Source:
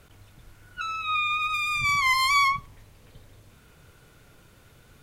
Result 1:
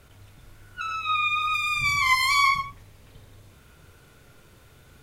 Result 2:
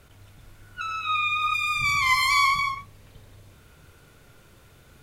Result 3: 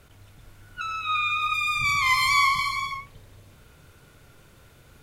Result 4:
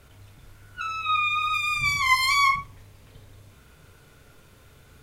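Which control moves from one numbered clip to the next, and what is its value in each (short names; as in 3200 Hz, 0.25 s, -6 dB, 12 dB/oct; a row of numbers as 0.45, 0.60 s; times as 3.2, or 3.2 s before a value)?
non-linear reverb, gate: 160, 290, 520, 80 ms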